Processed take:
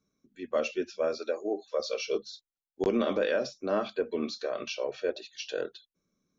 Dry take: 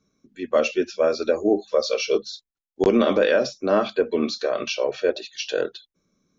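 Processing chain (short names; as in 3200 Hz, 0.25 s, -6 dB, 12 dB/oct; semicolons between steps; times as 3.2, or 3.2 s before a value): 1.18–1.8 HPF 380 Hz 12 dB/oct; gain -9 dB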